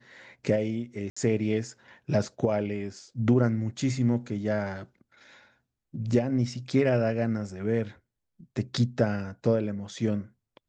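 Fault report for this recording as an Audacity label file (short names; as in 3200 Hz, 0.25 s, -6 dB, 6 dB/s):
1.100000	1.170000	gap 65 ms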